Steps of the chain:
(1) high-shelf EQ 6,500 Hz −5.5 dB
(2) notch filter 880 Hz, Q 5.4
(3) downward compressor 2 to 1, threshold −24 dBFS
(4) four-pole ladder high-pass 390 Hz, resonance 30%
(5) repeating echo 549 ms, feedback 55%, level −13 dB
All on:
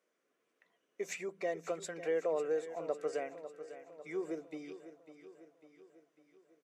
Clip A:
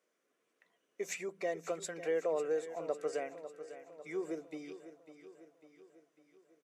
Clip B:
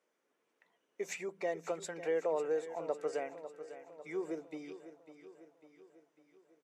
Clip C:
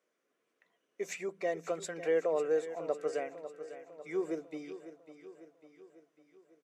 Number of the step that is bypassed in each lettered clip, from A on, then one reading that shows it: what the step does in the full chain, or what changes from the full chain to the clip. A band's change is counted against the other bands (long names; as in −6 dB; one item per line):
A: 1, 8 kHz band +3.0 dB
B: 2, 1 kHz band +1.5 dB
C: 3, change in integrated loudness +3.0 LU